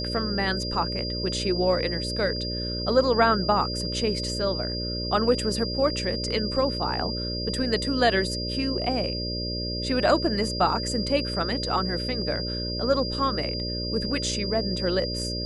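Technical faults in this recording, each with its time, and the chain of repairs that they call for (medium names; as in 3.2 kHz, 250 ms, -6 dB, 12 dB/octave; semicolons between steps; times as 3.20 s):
buzz 60 Hz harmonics 10 -32 dBFS
whine 4.8 kHz -31 dBFS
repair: de-hum 60 Hz, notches 10; band-stop 4.8 kHz, Q 30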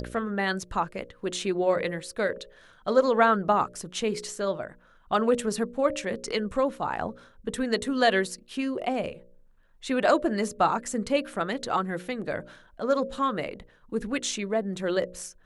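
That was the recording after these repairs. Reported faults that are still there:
nothing left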